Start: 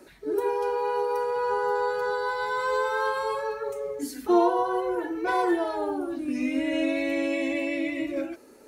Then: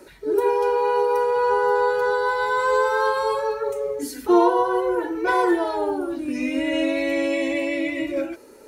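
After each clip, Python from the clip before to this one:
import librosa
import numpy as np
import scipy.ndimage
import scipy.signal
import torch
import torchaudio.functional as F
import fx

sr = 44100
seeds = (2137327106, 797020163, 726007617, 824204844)

y = x + 0.31 * np.pad(x, (int(2.1 * sr / 1000.0), 0))[:len(x)]
y = y * librosa.db_to_amplitude(4.5)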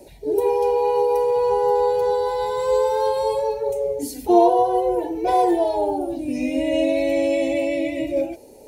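y = fx.curve_eq(x, sr, hz=(110.0, 390.0, 760.0, 1300.0, 2300.0, 12000.0), db=(0, -9, 1, -30, -11, -5))
y = y * librosa.db_to_amplitude(8.0)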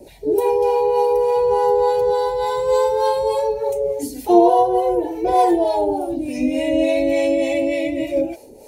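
y = fx.harmonic_tremolo(x, sr, hz=3.4, depth_pct=70, crossover_hz=530.0)
y = y * librosa.db_to_amplitude(6.0)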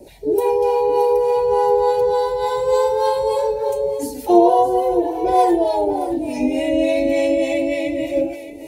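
y = x + 10.0 ** (-13.0 / 20.0) * np.pad(x, (int(625 * sr / 1000.0), 0))[:len(x)]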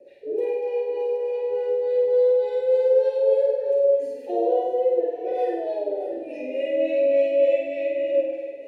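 y = fx.vowel_filter(x, sr, vowel='e')
y = fx.notch(y, sr, hz=7800.0, q=26.0)
y = fx.room_flutter(y, sr, wall_m=8.6, rt60_s=1.0)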